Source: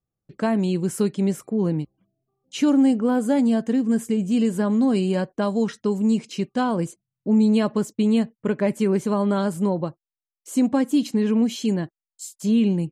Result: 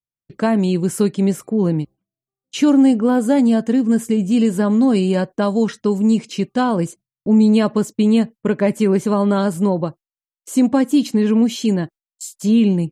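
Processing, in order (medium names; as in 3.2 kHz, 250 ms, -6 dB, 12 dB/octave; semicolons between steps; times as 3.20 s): gate with hold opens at -36 dBFS; trim +5 dB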